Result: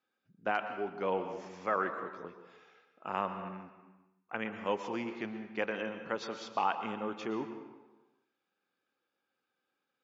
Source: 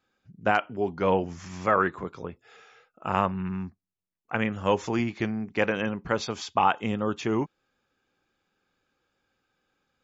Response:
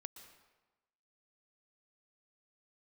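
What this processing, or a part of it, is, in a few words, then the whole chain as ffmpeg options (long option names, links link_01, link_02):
supermarket ceiling speaker: -filter_complex "[0:a]highpass=230,lowpass=5300[link_01];[1:a]atrim=start_sample=2205[link_02];[link_01][link_02]afir=irnorm=-1:irlink=0,volume=-3dB"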